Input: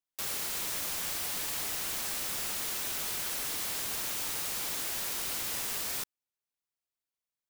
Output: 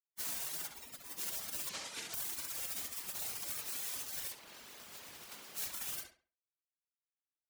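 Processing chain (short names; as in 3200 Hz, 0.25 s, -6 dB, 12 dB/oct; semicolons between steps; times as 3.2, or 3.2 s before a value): tracing distortion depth 0.14 ms; 0.66–1.18 high shelf 2200 Hz +6 dB; limiter -27 dBFS, peak gain reduction 7 dB; 4.33–5.56 low shelf 210 Hz +9.5 dB; spectral gate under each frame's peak -20 dB weak; 1.69–2.14 BPF 110–6900 Hz; negative-ratio compressor -45 dBFS, ratio -0.5; reverb removal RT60 1.1 s; darkening echo 68 ms, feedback 30%, low-pass 3600 Hz, level -4 dB; gain +5 dB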